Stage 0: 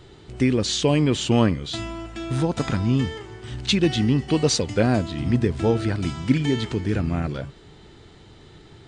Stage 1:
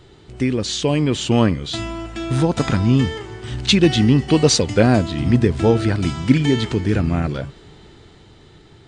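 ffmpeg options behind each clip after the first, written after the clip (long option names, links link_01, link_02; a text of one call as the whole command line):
ffmpeg -i in.wav -af "dynaudnorm=framelen=320:gausssize=9:maxgain=11.5dB" out.wav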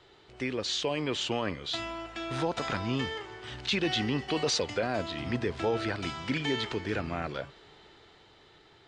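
ffmpeg -i in.wav -filter_complex "[0:a]acrossover=split=430 5900:gain=0.2 1 0.178[link_01][link_02][link_03];[link_01][link_02][link_03]amix=inputs=3:normalize=0,alimiter=limit=-14.5dB:level=0:latency=1:release=15,volume=-5dB" out.wav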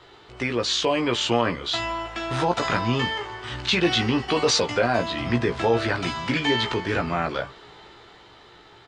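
ffmpeg -i in.wav -filter_complex "[0:a]equalizer=frequency=1100:width_type=o:width=1.1:gain=4.5,asplit=2[link_01][link_02];[link_02]adelay=17,volume=-5dB[link_03];[link_01][link_03]amix=inputs=2:normalize=0,volume=6dB" out.wav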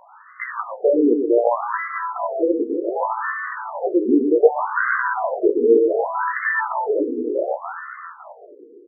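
ffmpeg -i in.wav -af "aecho=1:1:120|288|523.2|852.5|1313:0.631|0.398|0.251|0.158|0.1,afftfilt=real='re*between(b*sr/1024,340*pow(1500/340,0.5+0.5*sin(2*PI*0.66*pts/sr))/1.41,340*pow(1500/340,0.5+0.5*sin(2*PI*0.66*pts/sr))*1.41)':imag='im*between(b*sr/1024,340*pow(1500/340,0.5+0.5*sin(2*PI*0.66*pts/sr))/1.41,340*pow(1500/340,0.5+0.5*sin(2*PI*0.66*pts/sr))*1.41)':win_size=1024:overlap=0.75,volume=8dB" out.wav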